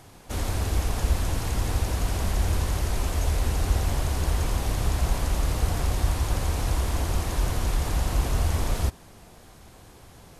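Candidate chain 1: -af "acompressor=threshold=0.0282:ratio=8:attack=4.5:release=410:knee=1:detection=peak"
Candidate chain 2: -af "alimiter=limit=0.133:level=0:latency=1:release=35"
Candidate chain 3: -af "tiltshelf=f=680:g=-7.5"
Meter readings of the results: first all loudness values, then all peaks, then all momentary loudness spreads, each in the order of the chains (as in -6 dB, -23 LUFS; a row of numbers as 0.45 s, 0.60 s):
-38.5 LUFS, -29.0 LUFS, -28.0 LUFS; -24.5 dBFS, -17.5 dBFS, -14.5 dBFS; 12 LU, 1 LU, 19 LU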